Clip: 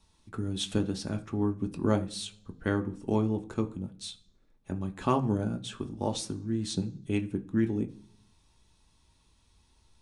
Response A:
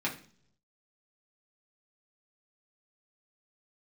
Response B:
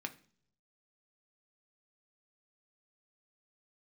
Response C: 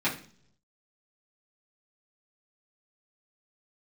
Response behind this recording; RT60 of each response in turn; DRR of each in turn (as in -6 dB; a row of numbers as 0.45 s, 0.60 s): B; 0.55 s, 0.55 s, 0.55 s; -4.5 dB, 5.5 dB, -9.5 dB